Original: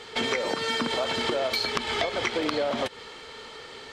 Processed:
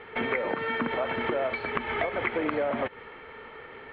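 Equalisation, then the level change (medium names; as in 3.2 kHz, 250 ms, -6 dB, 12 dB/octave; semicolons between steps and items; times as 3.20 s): resonant low-pass 2.2 kHz, resonance Q 1.8; distance through air 480 m; 0.0 dB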